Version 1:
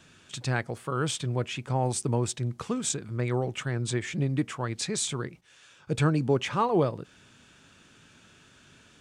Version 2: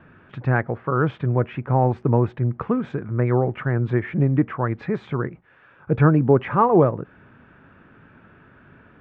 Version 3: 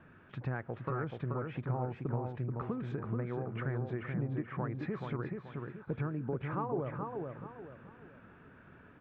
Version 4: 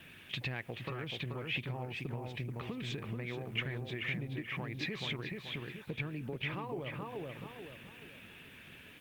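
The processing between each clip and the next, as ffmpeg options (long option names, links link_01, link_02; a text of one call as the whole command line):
ffmpeg -i in.wav -af "lowpass=frequency=1800:width=0.5412,lowpass=frequency=1800:width=1.3066,volume=8.5dB" out.wav
ffmpeg -i in.wav -filter_complex "[0:a]acompressor=threshold=-25dB:ratio=12,asplit=2[link_01][link_02];[link_02]adelay=431,lowpass=frequency=2800:poles=1,volume=-4dB,asplit=2[link_03][link_04];[link_04]adelay=431,lowpass=frequency=2800:poles=1,volume=0.36,asplit=2[link_05][link_06];[link_06]adelay=431,lowpass=frequency=2800:poles=1,volume=0.36,asplit=2[link_07][link_08];[link_08]adelay=431,lowpass=frequency=2800:poles=1,volume=0.36,asplit=2[link_09][link_10];[link_10]adelay=431,lowpass=frequency=2800:poles=1,volume=0.36[link_11];[link_03][link_05][link_07][link_09][link_11]amix=inputs=5:normalize=0[link_12];[link_01][link_12]amix=inputs=2:normalize=0,volume=-8dB" out.wav
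ffmpeg -i in.wav -af "acompressor=threshold=-38dB:ratio=2.5,aexciter=amount=14.3:drive=6.6:freq=2200" -ar 48000 -c:a libopus -b:a 32k out.opus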